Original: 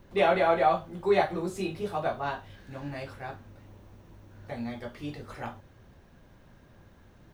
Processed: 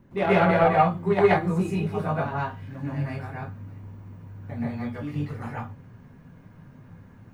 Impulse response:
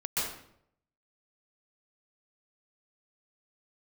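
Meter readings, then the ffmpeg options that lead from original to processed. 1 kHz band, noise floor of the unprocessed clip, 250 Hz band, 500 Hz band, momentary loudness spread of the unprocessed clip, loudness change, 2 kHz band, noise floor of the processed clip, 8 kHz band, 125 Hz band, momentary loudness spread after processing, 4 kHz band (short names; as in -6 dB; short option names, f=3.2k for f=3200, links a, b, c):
+4.0 dB, -57 dBFS, +8.5 dB, +3.5 dB, 18 LU, +5.0 dB, +5.0 dB, -50 dBFS, n/a, +13.0 dB, 21 LU, -1.0 dB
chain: -filter_complex "[0:a]equalizer=f=125:t=o:w=1:g=10,equalizer=f=250:t=o:w=1:g=11,equalizer=f=1k:t=o:w=1:g=4,equalizer=f=2k:t=o:w=1:g=4,equalizer=f=4k:t=o:w=1:g=-5,aeval=exprs='0.531*(cos(1*acos(clip(val(0)/0.531,-1,1)))-cos(1*PI/2))+0.0841*(cos(3*acos(clip(val(0)/0.531,-1,1)))-cos(3*PI/2))':c=same[a];[1:a]atrim=start_sample=2205,atrim=end_sample=6615[b];[a][b]afir=irnorm=-1:irlink=0"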